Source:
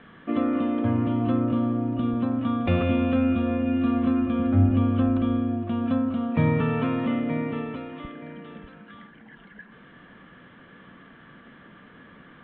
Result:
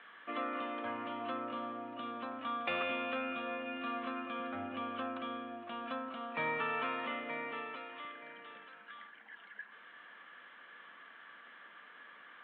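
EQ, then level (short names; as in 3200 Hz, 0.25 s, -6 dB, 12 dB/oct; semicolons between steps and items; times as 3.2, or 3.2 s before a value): Bessel high-pass 1200 Hz, order 2; air absorption 130 m; +1.0 dB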